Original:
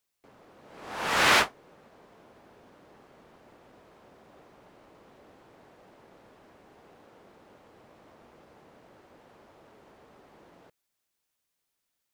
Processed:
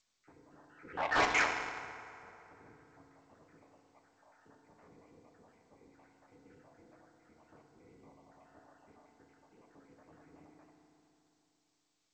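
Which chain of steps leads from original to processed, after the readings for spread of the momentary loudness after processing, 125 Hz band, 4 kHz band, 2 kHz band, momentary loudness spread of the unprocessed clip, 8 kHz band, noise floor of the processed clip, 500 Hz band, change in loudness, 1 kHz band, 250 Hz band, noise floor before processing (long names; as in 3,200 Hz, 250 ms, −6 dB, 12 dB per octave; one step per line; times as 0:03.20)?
20 LU, −7.5 dB, −12.5 dB, −6.0 dB, 15 LU, −11.0 dB, −79 dBFS, −5.5 dB, −9.0 dB, −5.5 dB, −6.0 dB, −82 dBFS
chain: time-frequency cells dropped at random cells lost 73%
single-sideband voice off tune −130 Hz 210–2,500 Hz
dynamic equaliser 1,400 Hz, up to −4 dB, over −50 dBFS, Q 7
harmonic generator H 5 −10 dB, 7 −37 dB, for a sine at −18.5 dBFS
mains-hum notches 60/120/180/240/300/360/420/480/540 Hz
feedback delay network reverb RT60 3.2 s, high-frequency decay 0.6×, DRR 0.5 dB
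harmonic generator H 7 −22 dB, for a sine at −14 dBFS
level −4 dB
G.722 64 kbit/s 16,000 Hz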